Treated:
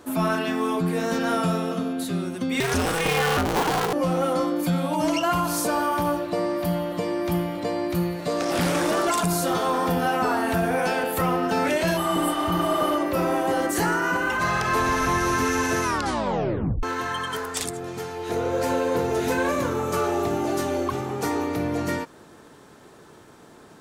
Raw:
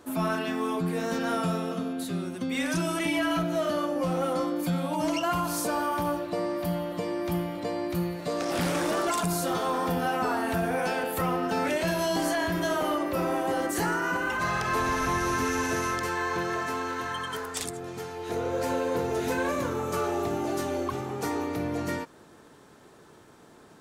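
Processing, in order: 2.6–3.93 cycle switcher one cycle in 2, inverted; 12–12.89 spectral repair 660–7400 Hz after; 15.83 tape stop 1.00 s; gain +4.5 dB

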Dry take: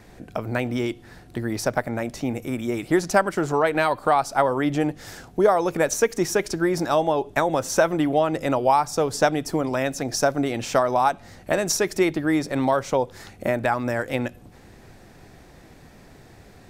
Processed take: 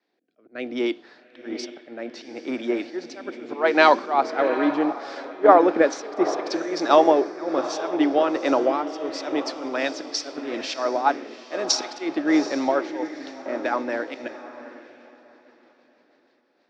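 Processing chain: in parallel at +1.5 dB: compressor 8:1, threshold -27 dBFS, peak gain reduction 14.5 dB; on the sum: rotary speaker horn 0.7 Hz, later 6.3 Hz, at 10.56; auto swell 0.129 s; elliptic band-pass 280–4700 Hz, stop band 50 dB; diffused feedback echo 0.779 s, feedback 49%, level -7 dB; three-band expander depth 100%

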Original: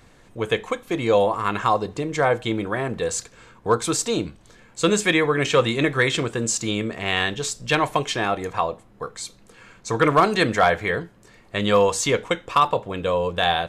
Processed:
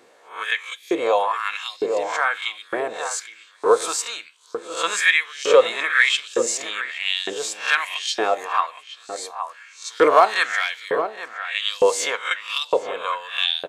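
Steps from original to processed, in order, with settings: spectral swells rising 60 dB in 0.39 s; outdoor echo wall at 140 m, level -9 dB; LFO high-pass saw up 1.1 Hz 370–5000 Hz; gain -2.5 dB

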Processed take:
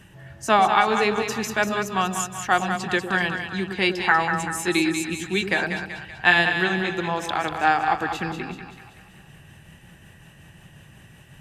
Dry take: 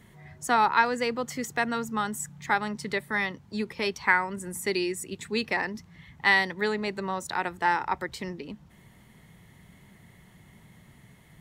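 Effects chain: delay-line pitch shifter -2 st; bell 2700 Hz +9 dB 0.36 oct; on a send: split-band echo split 660 Hz, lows 0.104 s, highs 0.191 s, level -7 dB; on the sum: gain +5.5 dB

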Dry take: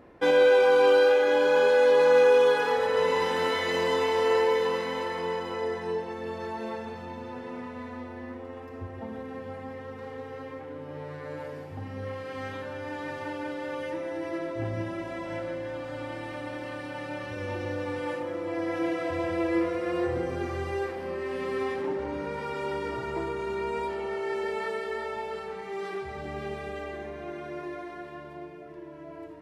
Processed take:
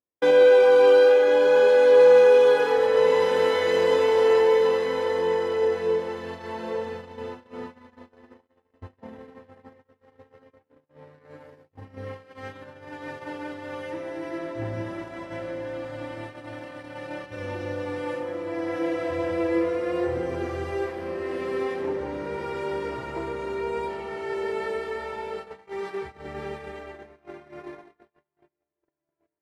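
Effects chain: diffused feedback echo 1.545 s, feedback 41%, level -12 dB; dynamic EQ 460 Hz, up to +6 dB, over -36 dBFS, Q 3.3; gate -35 dBFS, range -45 dB

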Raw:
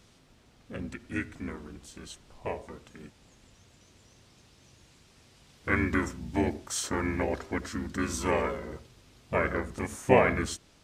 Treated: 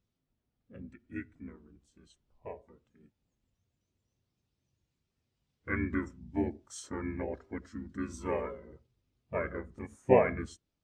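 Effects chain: spectral expander 1.5:1; gain -2.5 dB

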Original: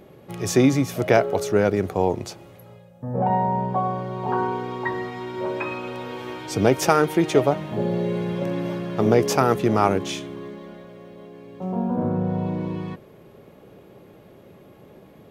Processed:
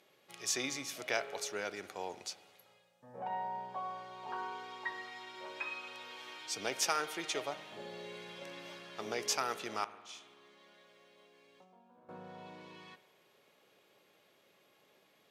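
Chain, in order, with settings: 9.84–12.09 compressor 10:1, threshold -37 dBFS, peak gain reduction 23 dB; band-pass 5000 Hz, Q 0.7; spring tank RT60 1.6 s, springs 55 ms, chirp 50 ms, DRR 14.5 dB; gain -4 dB

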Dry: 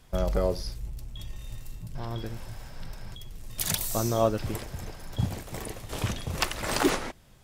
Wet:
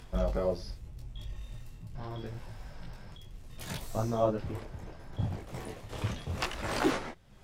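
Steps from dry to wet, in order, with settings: upward compressor, threshold -38 dBFS; LPF 3600 Hz 6 dB/oct, from 3.57 s 1600 Hz, from 5.47 s 3500 Hz; detuned doubles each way 26 cents

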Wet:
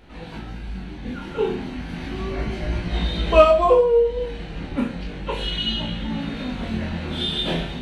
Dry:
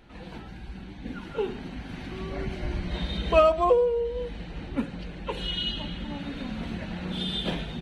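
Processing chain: flutter echo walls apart 6.2 m, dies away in 0.33 s; chorus 0.34 Hz, delay 17.5 ms, depth 7.6 ms; gain +8 dB

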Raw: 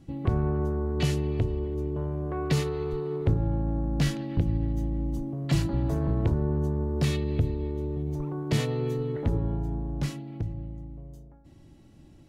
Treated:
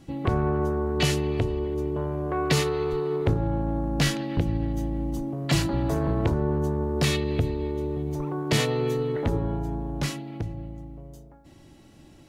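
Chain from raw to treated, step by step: low shelf 310 Hz -10 dB; gain +8.5 dB

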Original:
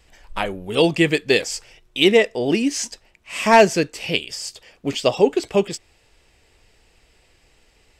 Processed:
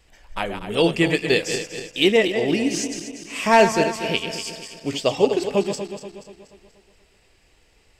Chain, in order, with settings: regenerating reverse delay 0.12 s, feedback 68%, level -8 dB; gain -2.5 dB

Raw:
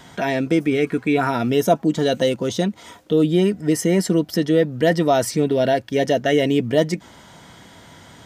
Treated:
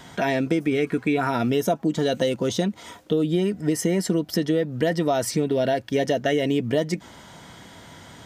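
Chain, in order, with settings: compressor, threshold -18 dBFS, peak gain reduction 8 dB

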